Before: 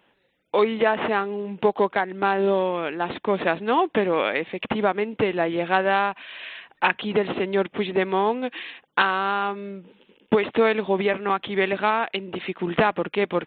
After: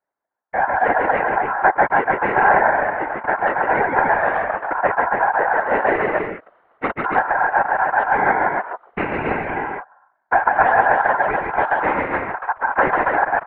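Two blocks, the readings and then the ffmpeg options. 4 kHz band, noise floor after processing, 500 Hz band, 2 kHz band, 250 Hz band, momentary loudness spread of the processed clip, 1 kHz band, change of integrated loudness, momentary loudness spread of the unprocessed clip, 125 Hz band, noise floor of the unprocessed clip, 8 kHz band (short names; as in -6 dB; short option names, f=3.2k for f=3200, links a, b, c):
under -10 dB, -68 dBFS, +0.5 dB, +8.0 dB, -3.0 dB, 10 LU, +8.5 dB, +5.0 dB, 8 LU, -1.0 dB, -66 dBFS, n/a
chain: -filter_complex "[0:a]aecho=1:1:142.9|279.9:0.708|0.631,dynaudnorm=f=730:g=3:m=13dB,aeval=exprs='val(0)*sin(2*PI*1200*n/s)':c=same,aeval=exprs='(tanh(2*val(0)+0.5)-tanh(0.5))/2':c=same,asplit=2[a][b];[b]acrusher=bits=3:mix=0:aa=0.5,volume=-7dB[c];[a][c]amix=inputs=2:normalize=0,afwtdn=0.0355,lowpass=f=1.9k:w=0.5412,lowpass=f=1.9k:w=1.3066,equalizer=f=820:t=o:w=2.8:g=15,afftfilt=real='hypot(re,im)*cos(2*PI*random(0))':imag='hypot(re,im)*sin(2*PI*random(1))':win_size=512:overlap=0.75,volume=-4.5dB"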